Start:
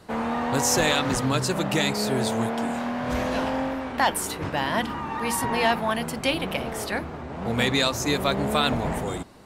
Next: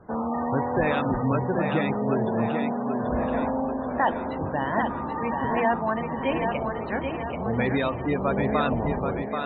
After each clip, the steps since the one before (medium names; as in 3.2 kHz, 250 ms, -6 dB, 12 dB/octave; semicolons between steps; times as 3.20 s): Gaussian low-pass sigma 3.2 samples; spectral gate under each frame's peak -20 dB strong; thinning echo 783 ms, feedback 49%, high-pass 190 Hz, level -5 dB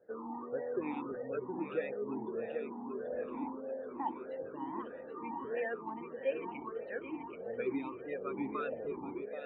talking filter e-u 1.6 Hz; trim -2.5 dB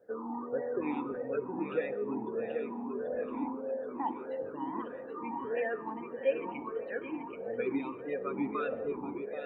reverberation RT60 1.6 s, pre-delay 4 ms, DRR 11.5 dB; trim +3 dB